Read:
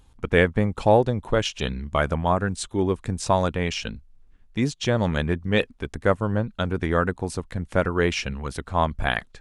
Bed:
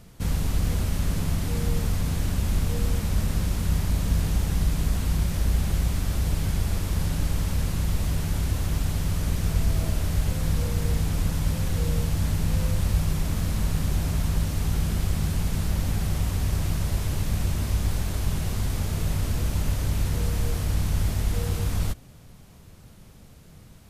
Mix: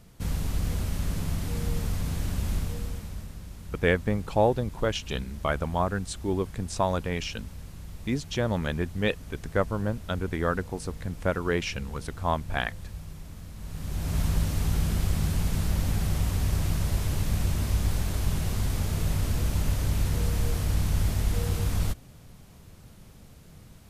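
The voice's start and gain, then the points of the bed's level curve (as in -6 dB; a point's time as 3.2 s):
3.50 s, -5.0 dB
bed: 2.53 s -4 dB
3.37 s -16.5 dB
13.55 s -16.5 dB
14.19 s -1 dB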